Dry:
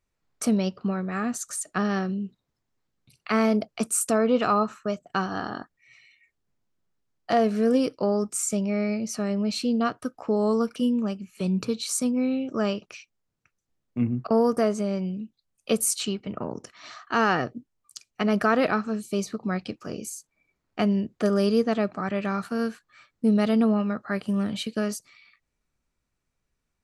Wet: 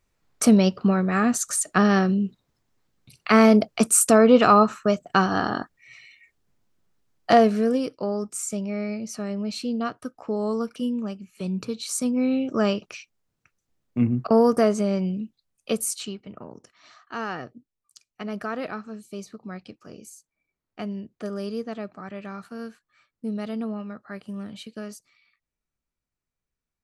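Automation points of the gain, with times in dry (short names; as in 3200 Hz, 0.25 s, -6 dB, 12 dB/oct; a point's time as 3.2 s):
7.32 s +7 dB
7.8 s -3 dB
11.73 s -3 dB
12.38 s +3.5 dB
15.23 s +3.5 dB
16.45 s -9 dB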